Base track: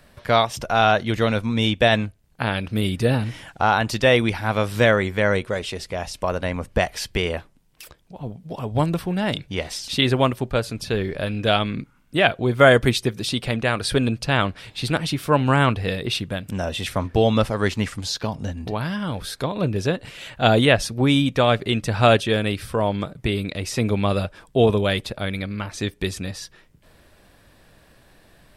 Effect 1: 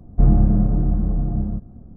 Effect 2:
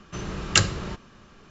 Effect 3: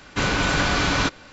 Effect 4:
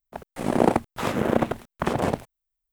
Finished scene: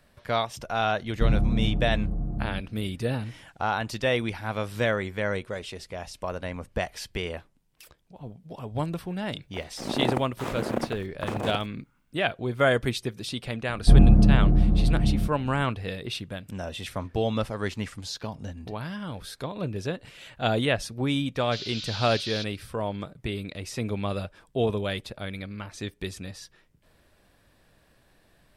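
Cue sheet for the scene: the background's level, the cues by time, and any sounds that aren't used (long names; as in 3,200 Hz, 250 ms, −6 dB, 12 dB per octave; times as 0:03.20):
base track −8.5 dB
0:01.02: mix in 1 −8.5 dB
0:09.41: mix in 4 −7 dB
0:13.69: mix in 1 −0.5 dB
0:21.35: mix in 3 −4 dB + flat-topped band-pass 4,200 Hz, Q 2.1
not used: 2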